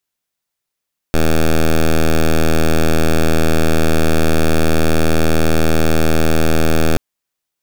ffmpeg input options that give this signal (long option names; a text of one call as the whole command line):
ffmpeg -f lavfi -i "aevalsrc='0.282*(2*lt(mod(80.2*t,1),0.08)-1)':duration=5.83:sample_rate=44100" out.wav